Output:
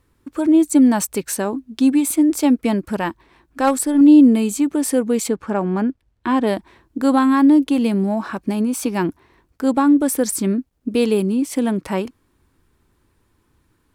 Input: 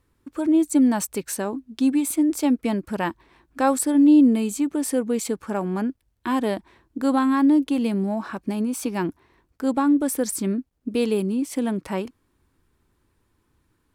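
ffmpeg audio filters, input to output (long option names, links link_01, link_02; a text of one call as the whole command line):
ffmpeg -i in.wav -filter_complex "[0:a]asettb=1/sr,asplit=3[link_01][link_02][link_03];[link_01]atrim=end=2.984[link_04];[link_02]atrim=start=2.98:end=4.01,asetpts=PTS-STARTPTS,afade=type=in:duration=0.004:curve=qsin,afade=type=out:start_time=1.026:duration=0.004:curve=qsin,aeval=exprs='0.398*(cos(1*acos(clip(val(0)/0.398,-1,1)))-cos(1*PI/2))+0.0708*(cos(3*acos(clip(val(0)/0.398,-1,1)))-cos(3*PI/2))+0.0251*(cos(5*acos(clip(val(0)/0.398,-1,1)))-cos(5*PI/2))+0.00251*(cos(6*acos(clip(val(0)/0.398,-1,1)))-cos(6*PI/2))':channel_layout=same[link_05];[link_03]atrim=start=4.006[link_06];[link_04][link_05]acrossfade=duration=0.004:curve1=hsin:curve2=qsin[link_07];[link_07][link_06]acrossfade=duration=0.004:curve1=qsin:curve2=hsin,asplit=3[link_08][link_09][link_10];[link_08]afade=type=out:start_time=5.28:duration=0.02[link_11];[link_09]aemphasis=mode=reproduction:type=50fm,afade=type=in:start_time=5.28:duration=0.02,afade=type=out:start_time=6.46:duration=0.02[link_12];[link_10]afade=type=in:start_time=6.46:duration=0.02[link_13];[link_11][link_12][link_13]amix=inputs=3:normalize=0,volume=5dB" out.wav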